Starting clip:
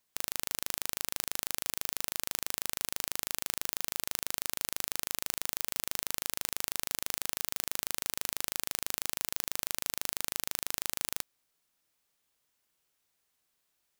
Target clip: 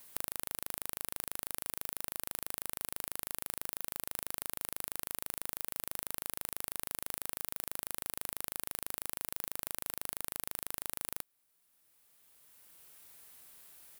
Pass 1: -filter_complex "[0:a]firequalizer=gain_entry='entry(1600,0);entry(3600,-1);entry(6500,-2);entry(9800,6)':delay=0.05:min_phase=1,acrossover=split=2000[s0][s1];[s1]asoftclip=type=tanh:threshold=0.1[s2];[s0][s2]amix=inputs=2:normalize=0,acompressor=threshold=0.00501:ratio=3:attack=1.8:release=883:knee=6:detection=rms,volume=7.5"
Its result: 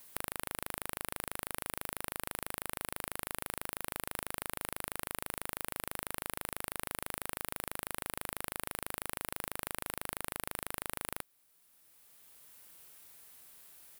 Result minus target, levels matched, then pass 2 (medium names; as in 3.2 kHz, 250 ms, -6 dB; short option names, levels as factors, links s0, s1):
saturation: distortion +13 dB
-filter_complex "[0:a]firequalizer=gain_entry='entry(1600,0);entry(3600,-1);entry(6500,-2);entry(9800,6)':delay=0.05:min_phase=1,acrossover=split=2000[s0][s1];[s1]asoftclip=type=tanh:threshold=0.398[s2];[s0][s2]amix=inputs=2:normalize=0,acompressor=threshold=0.00501:ratio=3:attack=1.8:release=883:knee=6:detection=rms,volume=7.5"